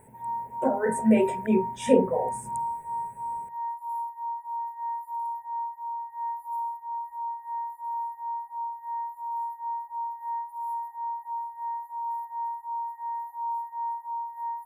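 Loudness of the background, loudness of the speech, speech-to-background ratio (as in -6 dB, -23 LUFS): -33.5 LUFS, -25.0 LUFS, 8.5 dB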